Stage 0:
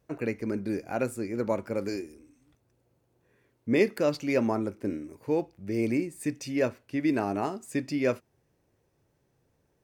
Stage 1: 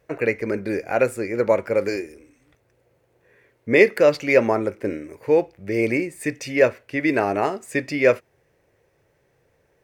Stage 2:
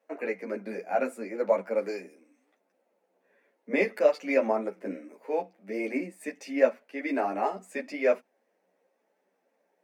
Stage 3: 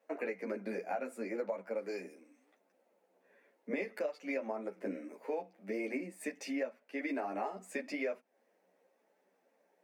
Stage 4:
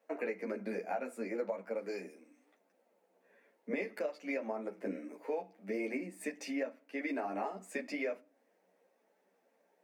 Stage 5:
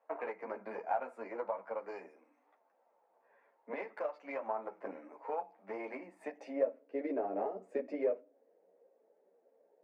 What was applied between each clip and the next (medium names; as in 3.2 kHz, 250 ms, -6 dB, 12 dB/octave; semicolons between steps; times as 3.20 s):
graphic EQ 250/500/2000 Hz -5/+8/+10 dB; trim +4.5 dB
rippled Chebyshev high-pass 180 Hz, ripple 9 dB; three-phase chorus
compression 8:1, threshold -34 dBFS, peak gain reduction 18.5 dB
reverberation RT60 0.40 s, pre-delay 4 ms, DRR 15 dB
Chebyshev shaper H 2 -20 dB, 6 -30 dB, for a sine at -24 dBFS; band-pass sweep 940 Hz -> 470 Hz, 6.12–6.78 s; trim +7.5 dB